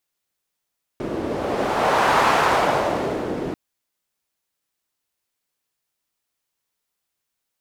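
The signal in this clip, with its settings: wind-like swept noise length 2.54 s, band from 350 Hz, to 1000 Hz, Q 1.4, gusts 1, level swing 10 dB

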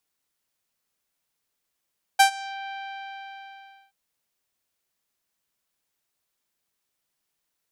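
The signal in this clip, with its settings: synth note saw G5 24 dB/oct, low-pass 3600 Hz, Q 0.86, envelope 2 oct, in 0.39 s, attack 12 ms, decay 0.10 s, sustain -22 dB, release 1.23 s, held 0.50 s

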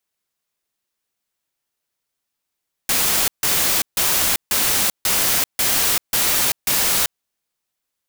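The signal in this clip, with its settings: noise bursts white, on 0.39 s, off 0.15 s, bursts 8, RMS -18 dBFS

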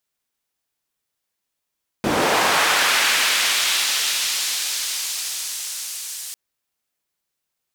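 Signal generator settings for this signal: swept filtered noise white, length 4.30 s bandpass, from 190 Hz, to 7400 Hz, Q 0.85, linear, gain ramp -24.5 dB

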